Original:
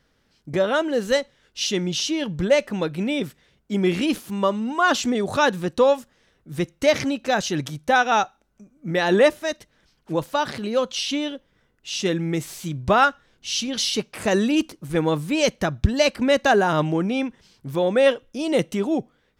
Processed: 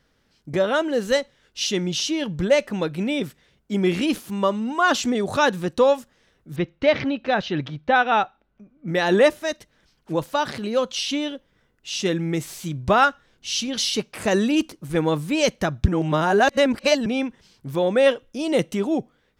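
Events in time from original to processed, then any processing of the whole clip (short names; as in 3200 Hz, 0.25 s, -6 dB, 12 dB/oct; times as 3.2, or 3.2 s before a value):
6.56–8.88 LPF 3800 Hz 24 dB/oct
15.88–17.06 reverse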